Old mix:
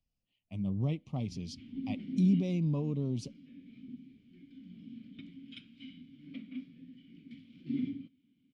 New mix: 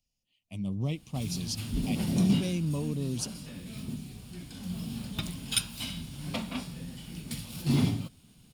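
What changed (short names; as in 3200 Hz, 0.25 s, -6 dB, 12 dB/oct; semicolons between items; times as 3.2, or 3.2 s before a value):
background: remove vowel filter i; master: remove tape spacing loss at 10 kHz 24 dB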